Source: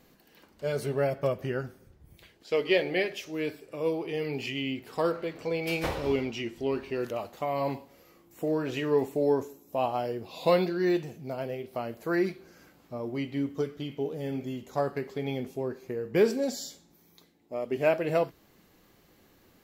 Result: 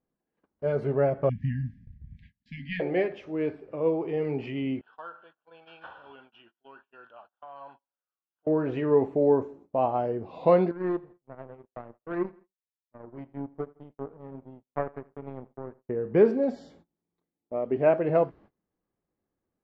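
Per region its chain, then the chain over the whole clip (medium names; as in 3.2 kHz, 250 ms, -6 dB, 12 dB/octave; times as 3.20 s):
1.29–2.80 s: brick-wall FIR band-stop 270–1600 Hz + bass shelf 160 Hz +8 dB
4.81–8.47 s: two resonant band-passes 2.1 kHz, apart 1.1 oct + comb 1.2 ms, depth 40%
10.71–15.89 s: high-order bell 4.9 kHz -8 dB 2.7 oct + power-law waveshaper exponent 2 + feedback delay 82 ms, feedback 47%, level -22.5 dB
whole clip: gate -53 dBFS, range -26 dB; low-pass 1.3 kHz 12 dB/octave; trim +3.5 dB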